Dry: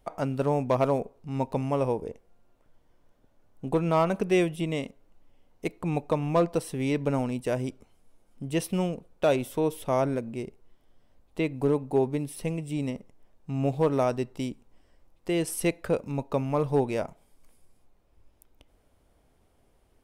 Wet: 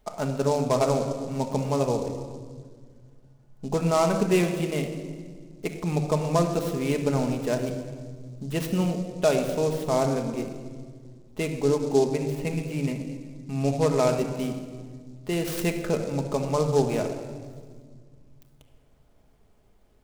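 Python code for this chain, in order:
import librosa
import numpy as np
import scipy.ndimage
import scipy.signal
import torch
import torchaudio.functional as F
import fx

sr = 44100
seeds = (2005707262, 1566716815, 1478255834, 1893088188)

y = fx.high_shelf_res(x, sr, hz=3100.0, db=-6.5, q=3.0, at=(12.02, 14.17))
y = fx.room_shoebox(y, sr, seeds[0], volume_m3=2300.0, walls='mixed', distance_m=1.4)
y = fx.noise_mod_delay(y, sr, seeds[1], noise_hz=5400.0, depth_ms=0.031)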